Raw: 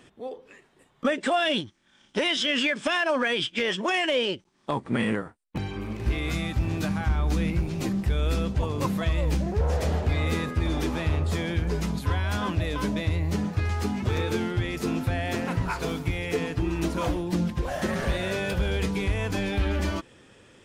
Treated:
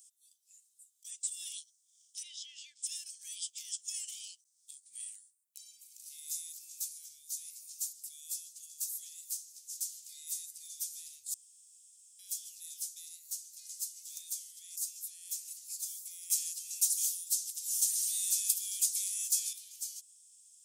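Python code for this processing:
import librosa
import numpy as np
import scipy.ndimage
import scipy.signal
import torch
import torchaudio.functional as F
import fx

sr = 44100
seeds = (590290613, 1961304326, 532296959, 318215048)

y = fx.lowpass(x, sr, hz=3100.0, slope=12, at=(2.22, 2.82), fade=0.02)
y = fx.highpass(y, sr, hz=120.0, slope=12, at=(7.23, 9.8))
y = fx.edit(y, sr, fx.room_tone_fill(start_s=11.34, length_s=0.85),
    fx.clip_gain(start_s=16.3, length_s=3.23, db=9.0), tone=tone)
y = scipy.signal.sosfilt(scipy.signal.cheby2(4, 80, 1300.0, 'highpass', fs=sr, output='sos'), y)
y = F.gain(torch.from_numpy(y), 11.0).numpy()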